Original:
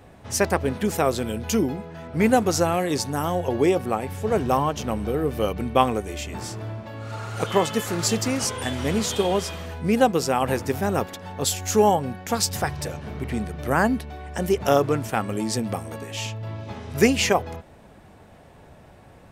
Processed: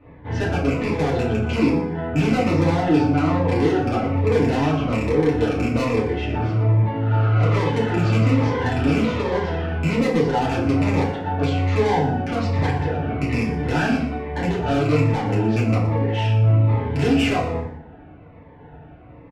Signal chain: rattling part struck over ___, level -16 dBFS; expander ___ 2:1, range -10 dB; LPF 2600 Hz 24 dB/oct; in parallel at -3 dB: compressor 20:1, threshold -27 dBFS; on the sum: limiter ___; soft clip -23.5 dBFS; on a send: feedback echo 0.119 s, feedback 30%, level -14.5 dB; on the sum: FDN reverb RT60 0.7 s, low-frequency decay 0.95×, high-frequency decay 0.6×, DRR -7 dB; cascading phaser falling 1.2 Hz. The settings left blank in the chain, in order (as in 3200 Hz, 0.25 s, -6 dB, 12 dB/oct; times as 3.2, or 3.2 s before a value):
-24 dBFS, -38 dBFS, -8 dBFS